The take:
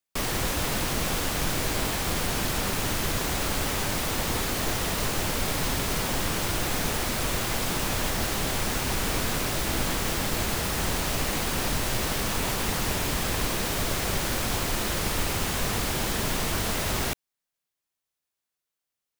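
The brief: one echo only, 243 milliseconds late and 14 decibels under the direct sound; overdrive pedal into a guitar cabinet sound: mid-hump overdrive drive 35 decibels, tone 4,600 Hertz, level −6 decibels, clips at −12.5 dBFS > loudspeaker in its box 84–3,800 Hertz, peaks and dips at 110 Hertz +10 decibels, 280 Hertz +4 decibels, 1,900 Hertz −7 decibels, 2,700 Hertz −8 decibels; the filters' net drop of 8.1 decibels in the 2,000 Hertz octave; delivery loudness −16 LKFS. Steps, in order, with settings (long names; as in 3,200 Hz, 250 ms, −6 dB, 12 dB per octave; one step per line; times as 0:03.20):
parametric band 2,000 Hz −4.5 dB
single-tap delay 243 ms −14 dB
mid-hump overdrive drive 35 dB, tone 4,600 Hz, level −6 dB, clips at −12.5 dBFS
loudspeaker in its box 84–3,800 Hz, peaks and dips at 110 Hz +10 dB, 280 Hz +4 dB, 1,900 Hz −7 dB, 2,700 Hz −8 dB
level +7.5 dB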